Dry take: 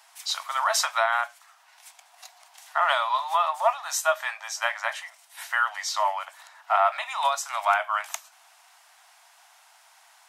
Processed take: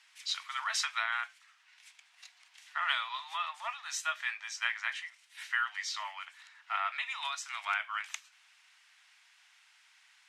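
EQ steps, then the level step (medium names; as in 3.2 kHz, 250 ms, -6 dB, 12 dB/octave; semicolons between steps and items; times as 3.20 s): ladder high-pass 1.7 kHz, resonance 25%; low-pass 9.7 kHz 12 dB/octave; tilt EQ -4 dB/octave; +7.5 dB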